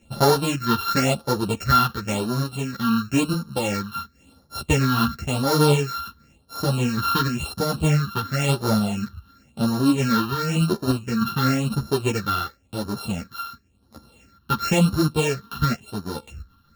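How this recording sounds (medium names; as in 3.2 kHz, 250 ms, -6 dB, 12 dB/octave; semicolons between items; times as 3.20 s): a buzz of ramps at a fixed pitch in blocks of 32 samples; phasing stages 6, 0.95 Hz, lowest notch 580–2500 Hz; random-step tremolo 3.3 Hz; a shimmering, thickened sound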